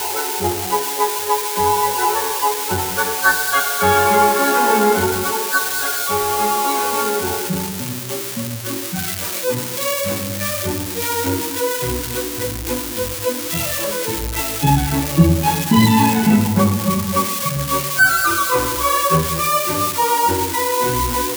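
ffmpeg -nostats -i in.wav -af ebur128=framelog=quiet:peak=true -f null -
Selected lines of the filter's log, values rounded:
Integrated loudness:
  I:         -17.5 LUFS
  Threshold: -27.5 LUFS
Loudness range:
  LRA:         5.7 LU
  Threshold: -37.5 LUFS
  LRA low:   -21.1 LUFS
  LRA high:  -15.4 LUFS
True peak:
  Peak:       -1.6 dBFS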